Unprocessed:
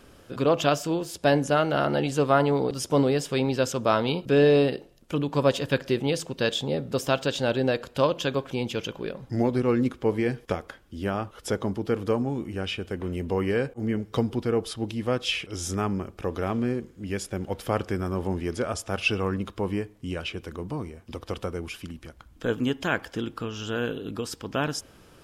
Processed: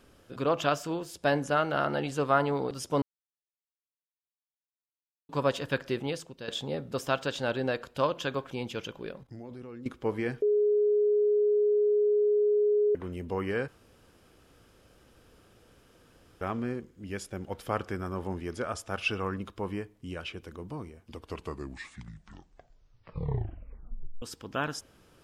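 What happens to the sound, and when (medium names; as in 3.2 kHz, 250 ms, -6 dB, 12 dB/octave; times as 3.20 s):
3.02–5.29 s: mute
6.01–6.48 s: fade out, to -12 dB
9.23–9.86 s: level held to a coarse grid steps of 18 dB
10.42–12.95 s: bleep 417 Hz -15 dBFS
13.68–16.41 s: room tone
21.02 s: tape stop 3.20 s
whole clip: dynamic bell 1.3 kHz, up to +6 dB, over -39 dBFS, Q 0.94; trim -7 dB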